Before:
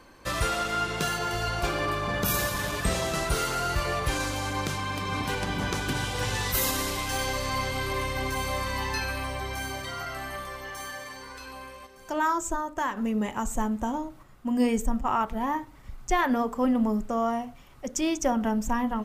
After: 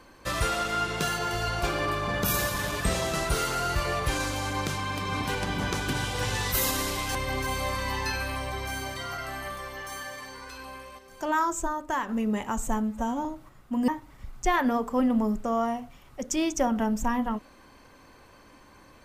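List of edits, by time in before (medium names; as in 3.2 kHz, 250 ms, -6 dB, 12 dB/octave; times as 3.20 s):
7.15–8.03 s: delete
13.71–13.99 s: stretch 1.5×
14.62–15.53 s: delete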